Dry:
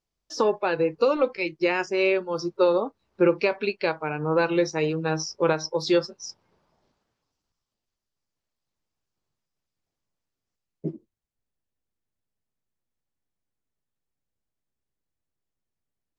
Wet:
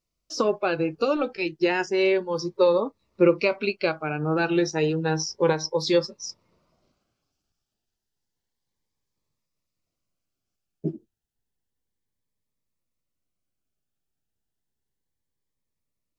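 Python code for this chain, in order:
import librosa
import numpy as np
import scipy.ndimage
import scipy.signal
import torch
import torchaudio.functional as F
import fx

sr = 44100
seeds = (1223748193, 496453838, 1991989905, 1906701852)

y = fx.notch_cascade(x, sr, direction='rising', hz=0.31)
y = y * librosa.db_to_amplitude(2.5)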